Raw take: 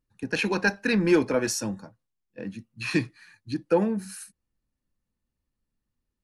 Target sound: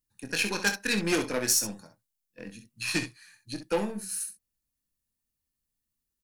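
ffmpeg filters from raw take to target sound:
ffmpeg -i in.wav -af "aeval=exprs='0.335*(cos(1*acos(clip(val(0)/0.335,-1,1)))-cos(1*PI/2))+0.133*(cos(2*acos(clip(val(0)/0.335,-1,1)))-cos(2*PI/2))+0.0335*(cos(4*acos(clip(val(0)/0.335,-1,1)))-cos(4*PI/2))+0.00944*(cos(7*acos(clip(val(0)/0.335,-1,1)))-cos(7*PI/2))+0.015*(cos(8*acos(clip(val(0)/0.335,-1,1)))-cos(8*PI/2))':channel_layout=same,crystalizer=i=5:c=0,aecho=1:1:24|65:0.355|0.335,volume=-7.5dB" out.wav

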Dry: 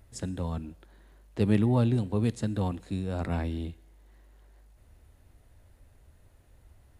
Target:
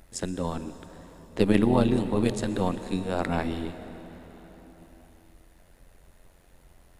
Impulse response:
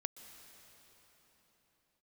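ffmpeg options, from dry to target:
-filter_complex "[0:a]tremolo=f=89:d=0.71,equalizer=frequency=93:width=0.78:gain=-12.5,asplit=2[link_01][link_02];[1:a]atrim=start_sample=2205[link_03];[link_02][link_03]afir=irnorm=-1:irlink=0,volume=9dB[link_04];[link_01][link_04]amix=inputs=2:normalize=0"

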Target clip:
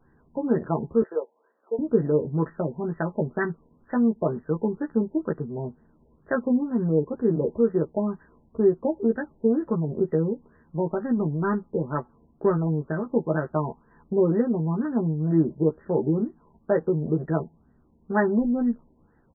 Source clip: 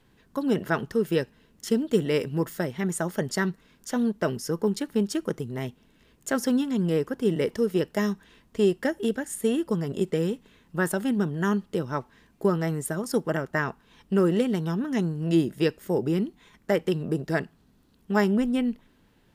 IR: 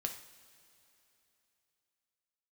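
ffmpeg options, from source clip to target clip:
-filter_complex "[0:a]asettb=1/sr,asplit=3[link_01][link_02][link_03];[link_01]atrim=end=1.024[link_04];[link_02]atrim=start=1.02:end=1.79,asetpts=PTS-STARTPTS,afade=type=in:duration=0.004:curve=qsin,afade=type=out:start_time=0.766:duration=0.004:curve=qsin,highpass=frequency=470:width=0.5412,highpass=frequency=470:width=1.3066[link_05];[link_03]atrim=start=1.786[link_06];[link_04][link_05]acrossfade=duration=0.004:curve1=hsin:curve2=qsin[link_07];[link_07][link_06]acrossfade=duration=0.004:curve1=qsin:curve2=hsin,asettb=1/sr,asplit=3[link_08][link_09][link_10];[link_08]atrim=end=10.904[link_11];[link_09]atrim=start=10.9:end=12.67,asetpts=PTS-STARTPTS,afade=type=in:duration=0.004:curve=qsin,afade=type=out:start_time=1.766:duration=0.004:curve=qsin,adynamicsmooth=sensitivity=6.5:basefreq=1600[link_12];[link_10]atrim=start=12.666[link_13];[link_11][link_12]acrossfade=duration=0.004:curve1=hsin:curve2=qsin[link_14];[link_14][link_13]acrossfade=duration=0.004:curve1=qsin:curve2=hsin,asplit=2[link_15][link_16];[link_16]adelay=13,volume=-3.5dB[link_17];[link_15][link_17]amix=inputs=2:normalize=0,afftfilt=real='re*lt(b*sr/1024,980*pow(2000/980,0.5+0.5*sin(2*PI*2.1*pts/sr)))':imag='im*lt(b*sr/1024,980*pow(2000/980,0.5+0.5*sin(2*PI*2.1*pts/sr)))':win_size=1024:overlap=0.75"

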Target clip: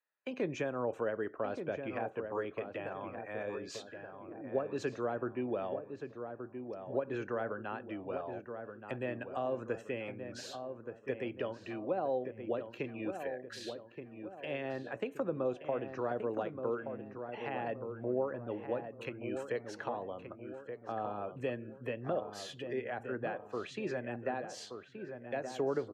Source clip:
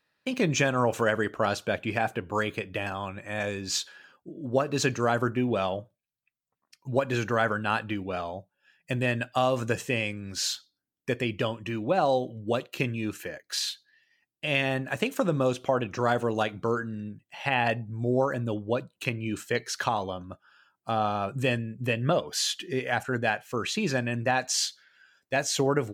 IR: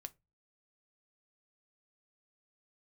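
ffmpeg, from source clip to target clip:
-filter_complex "[0:a]afftdn=noise_reduction=16:noise_floor=-50,acrossover=split=390 2400:gain=0.126 1 0.2[link_01][link_02][link_03];[link_01][link_02][link_03]amix=inputs=3:normalize=0,acrossover=split=440[link_04][link_05];[link_05]acompressor=threshold=-50dB:ratio=2.5[link_06];[link_04][link_06]amix=inputs=2:normalize=0,asplit=2[link_07][link_08];[link_08]adelay=1175,lowpass=frequency=1500:poles=1,volume=-7dB,asplit=2[link_09][link_10];[link_10]adelay=1175,lowpass=frequency=1500:poles=1,volume=0.46,asplit=2[link_11][link_12];[link_12]adelay=1175,lowpass=frequency=1500:poles=1,volume=0.46,asplit=2[link_13][link_14];[link_14]adelay=1175,lowpass=frequency=1500:poles=1,volume=0.46,asplit=2[link_15][link_16];[link_16]adelay=1175,lowpass=frequency=1500:poles=1,volume=0.46[link_17];[link_07][link_09][link_11][link_13][link_15][link_17]amix=inputs=6:normalize=0,volume=1dB"

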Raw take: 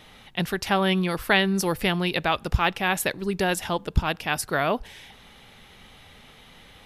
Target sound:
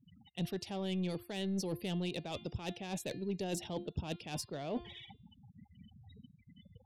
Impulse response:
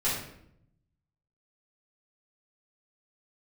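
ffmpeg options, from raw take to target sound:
-filter_complex "[0:a]afftfilt=real='re*gte(hypot(re,im),0.0126)':imag='im*gte(hypot(re,im),0.0126)':win_size=1024:overlap=0.75,bandreject=frequency=349.4:width_type=h:width=4,bandreject=frequency=698.8:width_type=h:width=4,bandreject=frequency=1048.2:width_type=h:width=4,bandreject=frequency=1397.6:width_type=h:width=4,bandreject=frequency=1747:width_type=h:width=4,bandreject=frequency=2096.4:width_type=h:width=4,bandreject=frequency=2445.8:width_type=h:width=4,bandreject=frequency=2795.2:width_type=h:width=4,bandreject=frequency=3144.6:width_type=h:width=4,bandreject=frequency=3494:width_type=h:width=4,bandreject=frequency=3843.4:width_type=h:width=4,bandreject=frequency=4192.8:width_type=h:width=4,bandreject=frequency=4542.2:width_type=h:width=4,bandreject=frequency=4891.6:width_type=h:width=4,acrossover=split=6700[link_01][link_02];[link_02]acompressor=threshold=-44dB:ratio=4:attack=1:release=60[link_03];[link_01][link_03]amix=inputs=2:normalize=0,highpass=frequency=86:width=0.5412,highpass=frequency=86:width=1.3066,areverse,acompressor=threshold=-35dB:ratio=16,areverse,aeval=exprs='(tanh(39.8*val(0)+0.15)-tanh(0.15))/39.8':channel_layout=same,acrossover=split=770|2600[link_04][link_05][link_06];[link_05]acrusher=bits=4:mix=0:aa=0.000001[link_07];[link_04][link_07][link_06]amix=inputs=3:normalize=0,volume=4.5dB"

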